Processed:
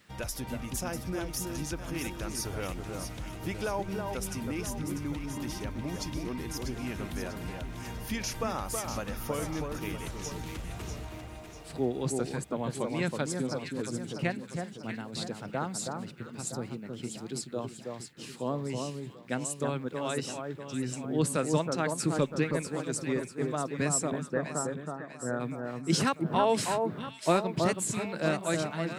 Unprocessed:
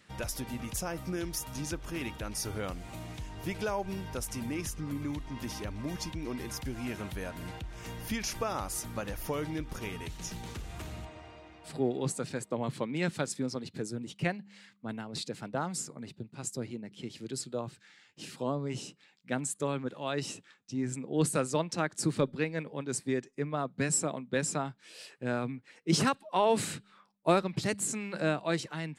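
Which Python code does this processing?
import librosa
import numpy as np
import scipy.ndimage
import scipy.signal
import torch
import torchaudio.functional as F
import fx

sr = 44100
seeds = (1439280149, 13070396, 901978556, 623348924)

y = fx.quant_dither(x, sr, seeds[0], bits=12, dither='none')
y = fx.cheby_ripple(y, sr, hz=1900.0, ripple_db=3, at=(24.22, 25.39), fade=0.02)
y = fx.echo_alternate(y, sr, ms=322, hz=1500.0, feedback_pct=66, wet_db=-4)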